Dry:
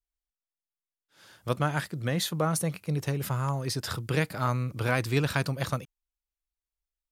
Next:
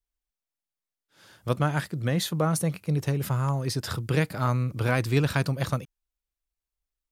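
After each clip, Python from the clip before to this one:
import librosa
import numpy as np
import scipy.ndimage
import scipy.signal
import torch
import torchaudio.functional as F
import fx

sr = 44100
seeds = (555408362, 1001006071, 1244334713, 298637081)

y = fx.low_shelf(x, sr, hz=470.0, db=4.0)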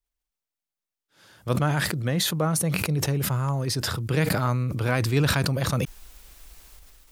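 y = fx.sustainer(x, sr, db_per_s=24.0)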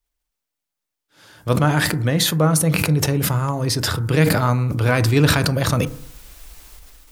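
y = fx.rev_fdn(x, sr, rt60_s=0.61, lf_ratio=1.1, hf_ratio=0.3, size_ms=20.0, drr_db=11.0)
y = y * librosa.db_to_amplitude(6.0)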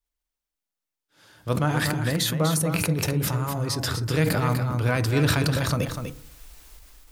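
y = x + 10.0 ** (-7.0 / 20.0) * np.pad(x, (int(247 * sr / 1000.0), 0))[:len(x)]
y = y * librosa.db_to_amplitude(-6.5)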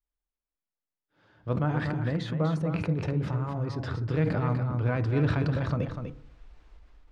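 y = fx.spacing_loss(x, sr, db_at_10k=36)
y = y * librosa.db_to_amplitude(-2.5)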